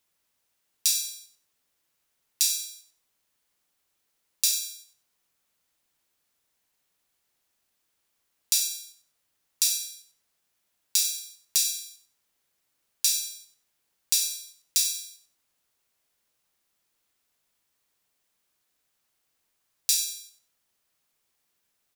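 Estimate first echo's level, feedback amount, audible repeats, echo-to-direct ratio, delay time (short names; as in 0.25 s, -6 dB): -12.0 dB, 24%, 2, -11.5 dB, 95 ms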